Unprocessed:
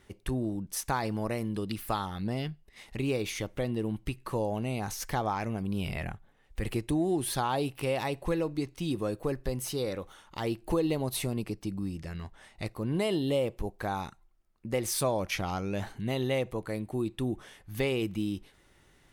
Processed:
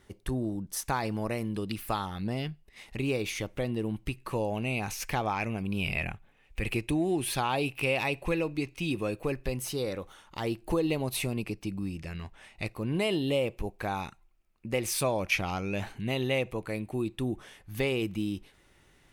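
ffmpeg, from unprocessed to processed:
ffmpeg -i in.wav -af "asetnsamples=nb_out_samples=441:pad=0,asendcmd='0.84 equalizer g 4;4.31 equalizer g 13.5;9.57 equalizer g 2.5;10.88 equalizer g 9.5;17.06 equalizer g 3',equalizer=frequency=2500:width_type=o:width=0.38:gain=-4" out.wav

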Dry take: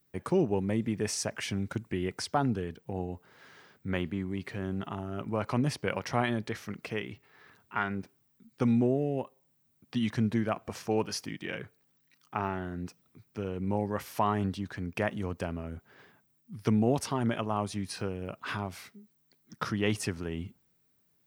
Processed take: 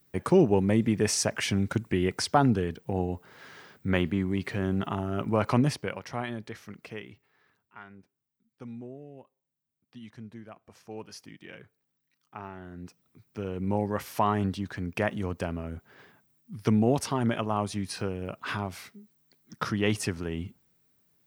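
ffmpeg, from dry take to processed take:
ffmpeg -i in.wav -af "volume=24.5dB,afade=type=out:start_time=5.53:duration=0.42:silence=0.281838,afade=type=out:start_time=6.92:duration=0.83:silence=0.281838,afade=type=in:start_time=10.65:duration=0.65:silence=0.446684,afade=type=in:start_time=12.54:duration=1.19:silence=0.266073" out.wav

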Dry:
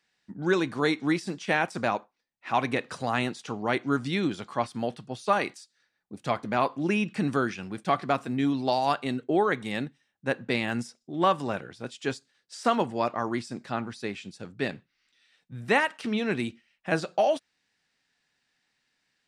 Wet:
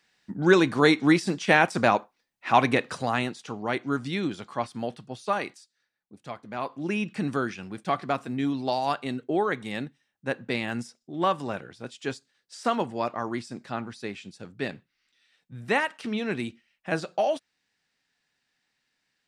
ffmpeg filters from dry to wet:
ffmpeg -i in.wav -af "volume=16dB,afade=type=out:start_time=2.58:duration=0.74:silence=0.421697,afade=type=out:start_time=5.07:duration=1.35:silence=0.316228,afade=type=in:start_time=6.42:duration=0.61:silence=0.316228" out.wav

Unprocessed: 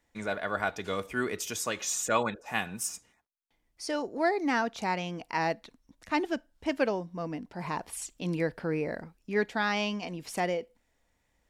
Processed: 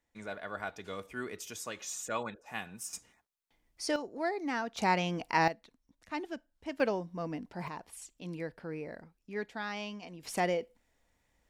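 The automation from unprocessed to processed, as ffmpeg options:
ffmpeg -i in.wav -af "asetnsamples=nb_out_samples=441:pad=0,asendcmd='2.93 volume volume 1dB;3.96 volume volume -6.5dB;4.77 volume volume 2.5dB;5.48 volume volume -9dB;6.8 volume volume -2dB;7.68 volume volume -9.5dB;10.23 volume volume -0.5dB',volume=-8.5dB" out.wav

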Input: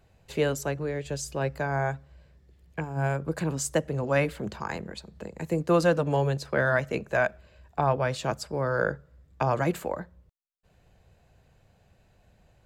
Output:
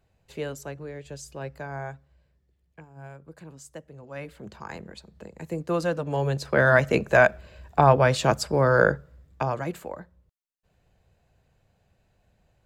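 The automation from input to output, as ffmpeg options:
ffmpeg -i in.wav -af "volume=16.5dB,afade=type=out:start_time=1.75:duration=1.15:silence=0.354813,afade=type=in:start_time=4.1:duration=0.7:silence=0.251189,afade=type=in:start_time=6.07:duration=0.83:silence=0.266073,afade=type=out:start_time=8.79:duration=0.81:silence=0.237137" out.wav

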